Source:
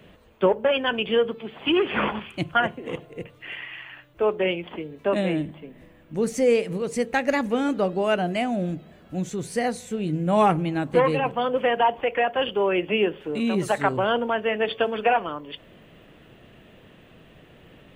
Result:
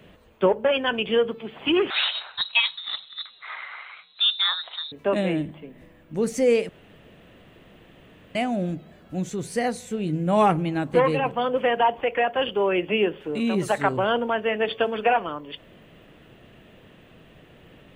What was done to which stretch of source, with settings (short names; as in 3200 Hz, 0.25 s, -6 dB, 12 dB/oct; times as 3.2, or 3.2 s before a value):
1.9–4.92 inverted band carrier 4000 Hz
6.69–8.35 room tone